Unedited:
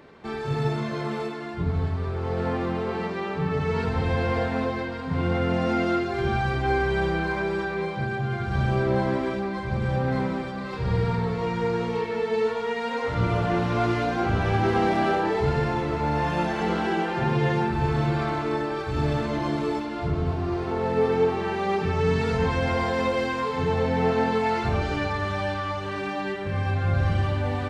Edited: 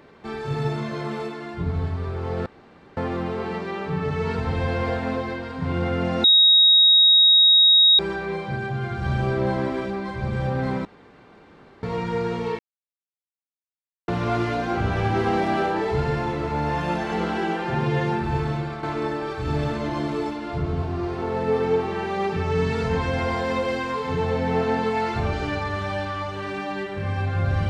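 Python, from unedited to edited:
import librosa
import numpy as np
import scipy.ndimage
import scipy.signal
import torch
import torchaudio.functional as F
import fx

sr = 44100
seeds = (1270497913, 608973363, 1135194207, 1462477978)

y = fx.edit(x, sr, fx.insert_room_tone(at_s=2.46, length_s=0.51),
    fx.bleep(start_s=5.73, length_s=1.75, hz=3780.0, db=-11.0),
    fx.room_tone_fill(start_s=10.34, length_s=0.98),
    fx.silence(start_s=12.08, length_s=1.49),
    fx.fade_out_to(start_s=17.84, length_s=0.48, floor_db=-8.5), tone=tone)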